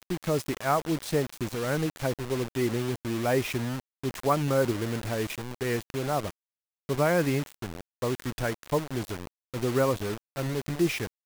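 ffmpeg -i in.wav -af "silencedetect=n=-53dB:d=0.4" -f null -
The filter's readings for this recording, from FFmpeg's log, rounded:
silence_start: 6.31
silence_end: 6.89 | silence_duration: 0.58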